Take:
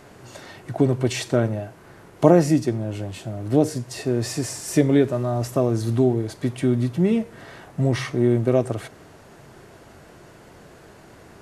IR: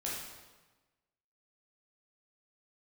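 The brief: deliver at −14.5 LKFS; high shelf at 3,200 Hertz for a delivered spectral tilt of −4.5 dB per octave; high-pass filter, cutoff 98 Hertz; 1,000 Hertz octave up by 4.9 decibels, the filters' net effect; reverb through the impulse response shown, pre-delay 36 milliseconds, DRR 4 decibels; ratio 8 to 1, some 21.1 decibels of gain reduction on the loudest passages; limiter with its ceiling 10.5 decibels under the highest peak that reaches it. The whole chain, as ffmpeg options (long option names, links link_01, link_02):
-filter_complex "[0:a]highpass=98,equalizer=frequency=1000:width_type=o:gain=6.5,highshelf=frequency=3200:gain=6,acompressor=threshold=-29dB:ratio=8,alimiter=level_in=1dB:limit=-24dB:level=0:latency=1,volume=-1dB,asplit=2[link_01][link_02];[1:a]atrim=start_sample=2205,adelay=36[link_03];[link_02][link_03]afir=irnorm=-1:irlink=0,volume=-6.5dB[link_04];[link_01][link_04]amix=inputs=2:normalize=0,volume=20.5dB"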